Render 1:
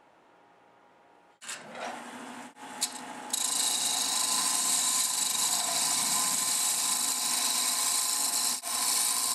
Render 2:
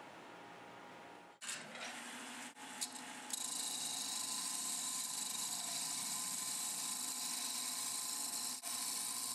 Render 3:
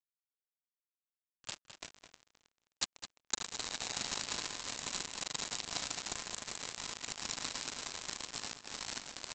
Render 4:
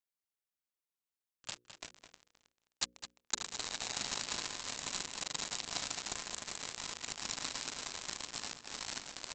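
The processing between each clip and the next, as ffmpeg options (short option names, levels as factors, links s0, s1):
-filter_complex "[0:a]areverse,acompressor=mode=upward:threshold=0.02:ratio=2.5,areverse,highpass=90,acrossover=split=290|1700[s0][s1][s2];[s0]acompressor=threshold=0.00158:ratio=4[s3];[s1]acompressor=threshold=0.00224:ratio=4[s4];[s2]acompressor=threshold=0.0126:ratio=4[s5];[s3][s4][s5]amix=inputs=3:normalize=0,volume=0.708"
-filter_complex "[0:a]bandreject=f=2100:w=5.6,aresample=16000,acrusher=bits=5:mix=0:aa=0.5,aresample=44100,asplit=2[s0][s1];[s1]adelay=209.9,volume=0.355,highshelf=f=4000:g=-4.72[s2];[s0][s2]amix=inputs=2:normalize=0,volume=3.35"
-af "bandreject=f=60:t=h:w=6,bandreject=f=120:t=h:w=6,bandreject=f=180:t=h:w=6,bandreject=f=240:t=h:w=6,bandreject=f=300:t=h:w=6,bandreject=f=360:t=h:w=6,bandreject=f=420:t=h:w=6,bandreject=f=480:t=h:w=6,bandreject=f=540:t=h:w=6"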